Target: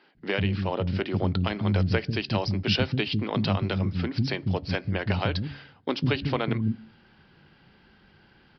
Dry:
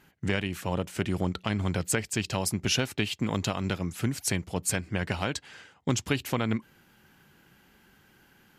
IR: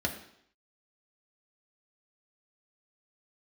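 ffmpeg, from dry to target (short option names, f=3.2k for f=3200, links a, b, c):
-filter_complex "[0:a]tiltshelf=f=1.2k:g=5.5,bandreject=f=139.4:t=h:w=4,bandreject=f=278.8:t=h:w=4,crystalizer=i=3.5:c=0,acrossover=split=270[a][b];[a]adelay=150[c];[c][b]amix=inputs=2:normalize=0,asplit=2[d][e];[1:a]atrim=start_sample=2205,adelay=16[f];[e][f]afir=irnorm=-1:irlink=0,volume=-26.5dB[g];[d][g]amix=inputs=2:normalize=0,aresample=11025,aresample=44100"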